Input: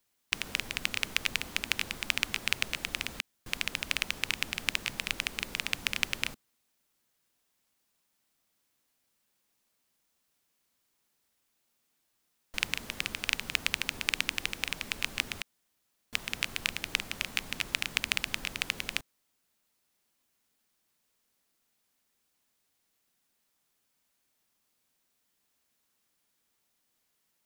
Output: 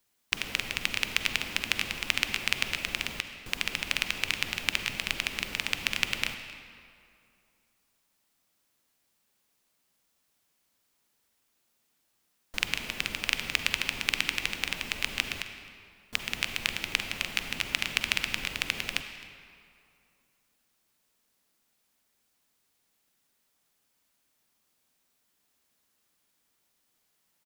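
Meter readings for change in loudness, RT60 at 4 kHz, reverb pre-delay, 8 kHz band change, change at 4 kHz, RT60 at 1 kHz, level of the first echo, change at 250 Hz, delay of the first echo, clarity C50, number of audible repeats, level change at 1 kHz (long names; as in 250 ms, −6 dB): +2.5 dB, 1.6 s, 40 ms, +1.0 dB, +2.5 dB, 2.5 s, −21.5 dB, +2.5 dB, 263 ms, 7.5 dB, 1, +3.0 dB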